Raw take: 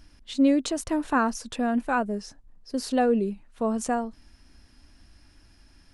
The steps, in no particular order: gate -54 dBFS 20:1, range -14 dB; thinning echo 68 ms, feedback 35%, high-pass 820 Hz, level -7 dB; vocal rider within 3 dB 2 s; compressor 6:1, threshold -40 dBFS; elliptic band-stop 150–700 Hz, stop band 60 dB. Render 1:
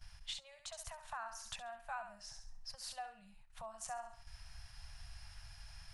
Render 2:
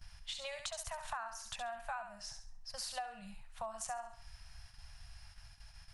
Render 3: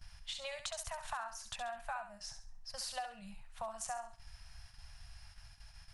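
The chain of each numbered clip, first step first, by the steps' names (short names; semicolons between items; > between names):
thinning echo > compressor > vocal rider > gate > elliptic band-stop; vocal rider > elliptic band-stop > gate > thinning echo > compressor; vocal rider > elliptic band-stop > compressor > gate > thinning echo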